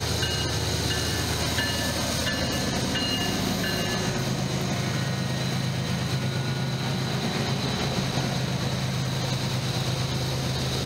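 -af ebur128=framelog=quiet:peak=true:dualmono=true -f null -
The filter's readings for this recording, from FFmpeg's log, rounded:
Integrated loudness:
  I:         -23.3 LUFS
  Threshold: -33.3 LUFS
Loudness range:
  LRA:         1.8 LU
  Threshold: -43.3 LUFS
  LRA low:   -24.0 LUFS
  LRA high:  -22.3 LUFS
True peak:
  Peak:      -11.9 dBFS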